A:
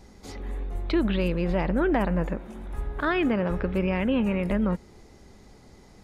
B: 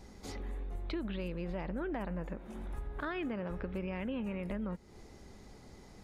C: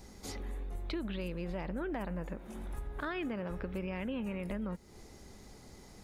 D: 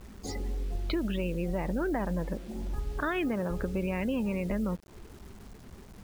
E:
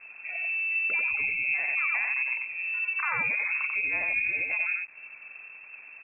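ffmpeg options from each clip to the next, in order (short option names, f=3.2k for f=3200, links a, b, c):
-af "acompressor=threshold=-36dB:ratio=3,volume=-2.5dB"
-af "highshelf=f=6k:g=9.5"
-af "afftdn=nr=20:nf=-47,acrusher=bits=9:mix=0:aa=0.000001,volume=7dB"
-af "aecho=1:1:91:0.708,lowpass=f=2.3k:t=q:w=0.5098,lowpass=f=2.3k:t=q:w=0.6013,lowpass=f=2.3k:t=q:w=0.9,lowpass=f=2.3k:t=q:w=2.563,afreqshift=-2700"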